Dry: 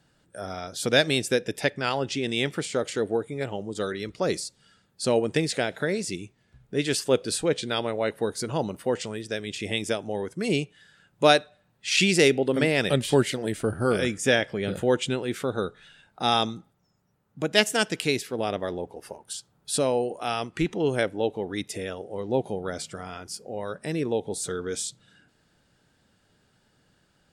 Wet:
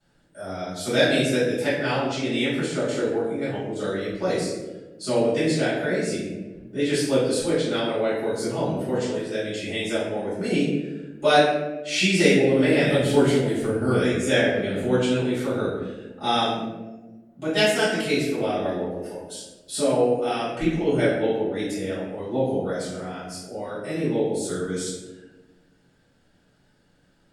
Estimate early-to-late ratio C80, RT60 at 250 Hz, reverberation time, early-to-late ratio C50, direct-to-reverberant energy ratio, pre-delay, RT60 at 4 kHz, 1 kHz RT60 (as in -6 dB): 4.0 dB, 1.9 s, 1.2 s, 0.5 dB, -15.0 dB, 3 ms, 0.65 s, 0.95 s